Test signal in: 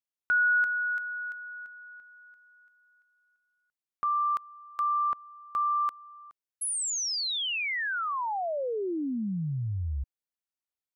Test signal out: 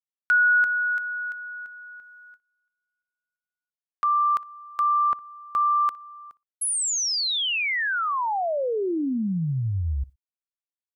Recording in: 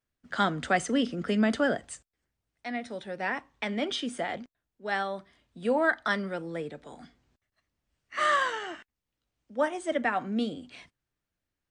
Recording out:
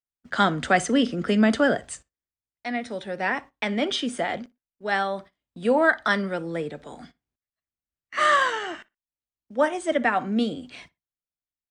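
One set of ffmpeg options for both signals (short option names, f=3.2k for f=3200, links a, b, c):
-filter_complex "[0:a]agate=range=-24dB:threshold=-57dB:ratio=16:release=131:detection=peak,asplit=2[a][b];[b]adelay=60,lowpass=f=3.4k:p=1,volume=-22dB,asplit=2[c][d];[d]adelay=60,lowpass=f=3.4k:p=1,volume=0.16[e];[c][e]amix=inputs=2:normalize=0[f];[a][f]amix=inputs=2:normalize=0,volume=5.5dB"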